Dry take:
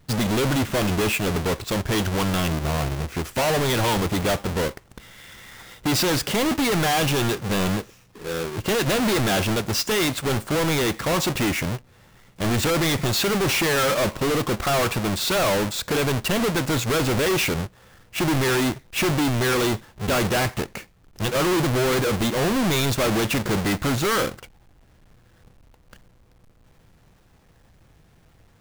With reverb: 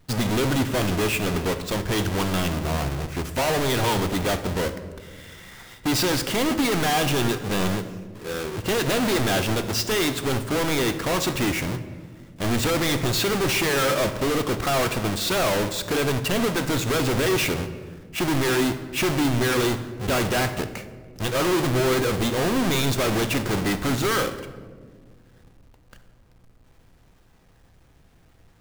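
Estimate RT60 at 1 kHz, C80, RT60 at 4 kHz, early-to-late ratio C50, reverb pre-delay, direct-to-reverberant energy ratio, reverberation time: 1.4 s, 13.5 dB, 0.90 s, 11.5 dB, 3 ms, 9.0 dB, 1.7 s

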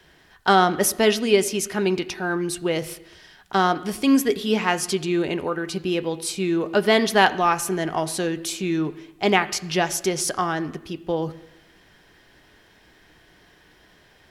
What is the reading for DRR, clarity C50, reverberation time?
11.0 dB, 16.5 dB, 0.95 s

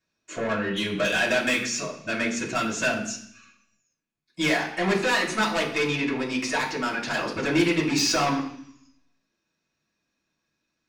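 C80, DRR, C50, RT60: 10.5 dB, -7.0 dB, 7.5 dB, 0.65 s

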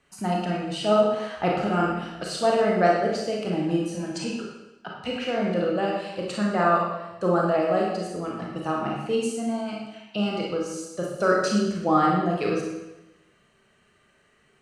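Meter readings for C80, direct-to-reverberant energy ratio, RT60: 3.5 dB, -2.5 dB, 0.95 s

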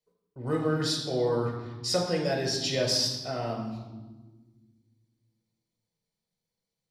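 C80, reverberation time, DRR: 7.0 dB, 1.4 s, 0.0 dB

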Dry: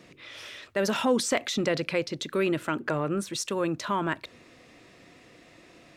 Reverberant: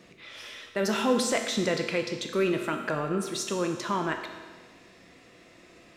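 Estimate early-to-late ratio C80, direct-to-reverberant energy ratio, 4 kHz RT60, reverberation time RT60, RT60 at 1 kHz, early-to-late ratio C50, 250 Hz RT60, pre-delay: 8.0 dB, 4.0 dB, 1.4 s, 1.4 s, 1.4 s, 6.5 dB, 1.5 s, 5 ms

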